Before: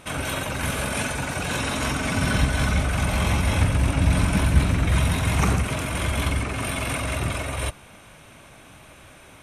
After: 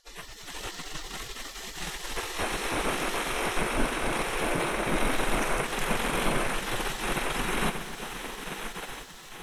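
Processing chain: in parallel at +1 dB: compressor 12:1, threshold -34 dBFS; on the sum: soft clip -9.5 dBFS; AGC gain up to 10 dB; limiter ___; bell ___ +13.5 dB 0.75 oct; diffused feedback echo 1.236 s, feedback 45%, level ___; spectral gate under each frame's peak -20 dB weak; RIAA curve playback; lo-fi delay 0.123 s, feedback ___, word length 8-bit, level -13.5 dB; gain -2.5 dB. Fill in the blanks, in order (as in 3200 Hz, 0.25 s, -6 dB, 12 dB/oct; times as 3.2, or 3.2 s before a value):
-11 dBFS, 11000 Hz, -7.5 dB, 80%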